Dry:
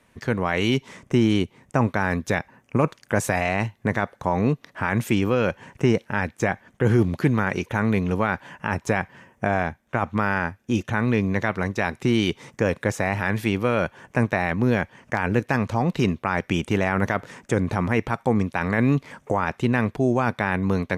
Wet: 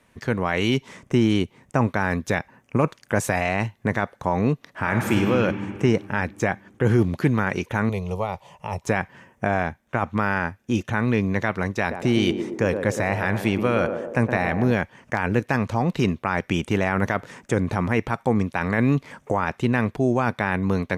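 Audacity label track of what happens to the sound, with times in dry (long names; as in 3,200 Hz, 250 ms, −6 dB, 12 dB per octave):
4.800000	5.280000	thrown reverb, RT60 2.6 s, DRR 2 dB
7.890000	8.840000	phaser with its sweep stopped centre 660 Hz, stages 4
11.790000	14.720000	feedback echo with a band-pass in the loop 118 ms, feedback 67%, band-pass 430 Hz, level −5 dB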